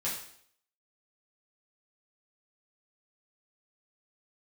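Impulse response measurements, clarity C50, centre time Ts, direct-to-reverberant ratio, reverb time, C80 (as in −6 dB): 4.5 dB, 38 ms, −7.5 dB, 0.65 s, 8.0 dB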